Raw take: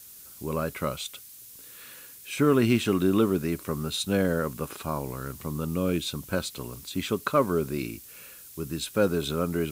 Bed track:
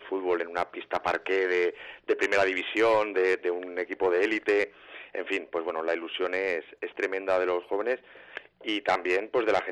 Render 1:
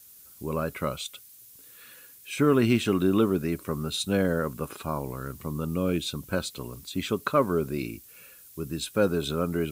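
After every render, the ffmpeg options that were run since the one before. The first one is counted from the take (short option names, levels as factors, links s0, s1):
-af "afftdn=nr=6:nf=-48"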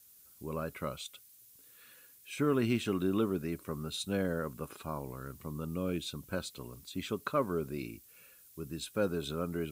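-af "volume=0.398"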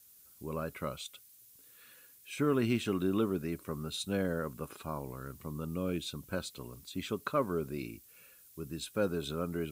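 -af anull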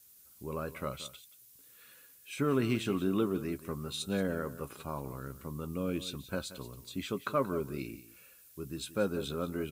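-filter_complex "[0:a]asplit=2[s0][s1];[s1]adelay=15,volume=0.251[s2];[s0][s2]amix=inputs=2:normalize=0,aecho=1:1:179:0.178"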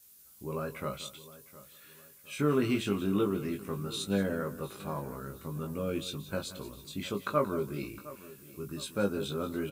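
-filter_complex "[0:a]asplit=2[s0][s1];[s1]adelay=20,volume=0.631[s2];[s0][s2]amix=inputs=2:normalize=0,asplit=2[s3][s4];[s4]adelay=711,lowpass=f=4600:p=1,volume=0.133,asplit=2[s5][s6];[s6]adelay=711,lowpass=f=4600:p=1,volume=0.42,asplit=2[s7][s8];[s8]adelay=711,lowpass=f=4600:p=1,volume=0.42[s9];[s3][s5][s7][s9]amix=inputs=4:normalize=0"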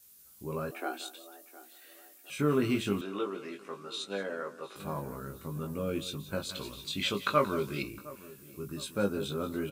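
-filter_complex "[0:a]asettb=1/sr,asplit=3[s0][s1][s2];[s0]atrim=end=0.714[s3];[s1]atrim=start=0.71:end=2.3,asetpts=PTS-STARTPTS,afade=t=in:d=0.004:c=qsin,afade=t=out:st=1.586:d=0.004:c=qsin,afreqshift=180[s4];[s2]atrim=start=2.296[s5];[s3][s4]acrossfade=d=0.004:c1=hsin:c2=qsin[s6];[s6][s5]acrossfade=d=0.004:c1=qsin:c2=hsin,asettb=1/sr,asplit=3[s7][s8][s9];[s7]atrim=end=3.014[s10];[s8]atrim=start=3.01:end=4.76,asetpts=PTS-STARTPTS,afade=t=in:d=0.004:c=qsin,afade=t=out:st=1.746:d=0.004:c=qsin,highpass=460,lowpass=6000[s11];[s9]atrim=start=4.756[s12];[s10][s11]acrossfade=d=0.004:c1=hsin:c2=qsin[s13];[s13][s12]acrossfade=d=0.004:c1=qsin:c2=hsin,asettb=1/sr,asplit=3[s14][s15][s16];[s14]atrim=end=6.494[s17];[s15]atrim=start=6.49:end=7.83,asetpts=PTS-STARTPTS,afade=t=in:d=0.004:c=qsin,afade=t=out:st=1.336:d=0.004:c=qsin,equalizer=f=3200:t=o:w=2.1:g=11[s18];[s16]atrim=start=7.826[s19];[s17][s18]acrossfade=d=0.004:c1=hsin:c2=qsin[s20];[s20][s19]acrossfade=d=0.004:c1=qsin:c2=hsin"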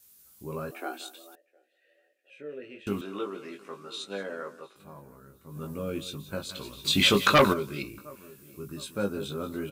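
-filter_complex "[0:a]asettb=1/sr,asplit=3[s0][s1][s2];[s0]atrim=end=1.354[s3];[s1]atrim=start=1.35:end=2.87,asetpts=PTS-STARTPTS,afade=t=in:d=0.004:c=qsin,afade=t=out:st=1.516:d=0.004:c=qsin,asplit=3[s4][s5][s6];[s4]bandpass=f=530:t=q:w=8,volume=1[s7];[s5]bandpass=f=1840:t=q:w=8,volume=0.501[s8];[s6]bandpass=f=2480:t=q:w=8,volume=0.355[s9];[s7][s8][s9]amix=inputs=3:normalize=0[s10];[s2]atrim=start=2.866[s11];[s3][s10]acrossfade=d=0.004:c1=hsin:c2=qsin[s12];[s12][s11]acrossfade=d=0.004:c1=qsin:c2=hsin,asplit=3[s13][s14][s15];[s13]afade=t=out:st=6.84:d=0.02[s16];[s14]aeval=exprs='0.224*sin(PI/2*2.51*val(0)/0.224)':c=same,afade=t=in:st=6.84:d=0.02,afade=t=out:st=7.52:d=0.02[s17];[s15]afade=t=in:st=7.52:d=0.02[s18];[s16][s17][s18]amix=inputs=3:normalize=0,asplit=3[s19][s20][s21];[s19]atrim=end=4.74,asetpts=PTS-STARTPTS,afade=t=out:st=4.55:d=0.19:silence=0.281838[s22];[s20]atrim=start=4.74:end=5.45,asetpts=PTS-STARTPTS,volume=0.282[s23];[s21]atrim=start=5.45,asetpts=PTS-STARTPTS,afade=t=in:d=0.19:silence=0.281838[s24];[s22][s23][s24]concat=n=3:v=0:a=1"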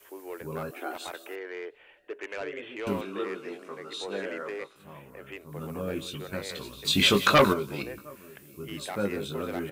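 -filter_complex "[1:a]volume=0.224[s0];[0:a][s0]amix=inputs=2:normalize=0"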